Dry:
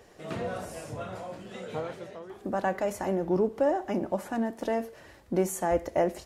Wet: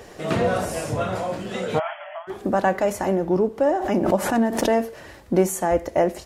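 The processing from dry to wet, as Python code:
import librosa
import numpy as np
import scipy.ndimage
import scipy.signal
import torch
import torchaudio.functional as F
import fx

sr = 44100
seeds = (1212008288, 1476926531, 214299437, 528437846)

y = fx.rider(x, sr, range_db=4, speed_s=0.5)
y = fx.brickwall_bandpass(y, sr, low_hz=580.0, high_hz=3400.0, at=(1.78, 2.27), fade=0.02)
y = fx.pre_swell(y, sr, db_per_s=57.0, at=(3.62, 4.65), fade=0.02)
y = y * librosa.db_to_amplitude(8.5)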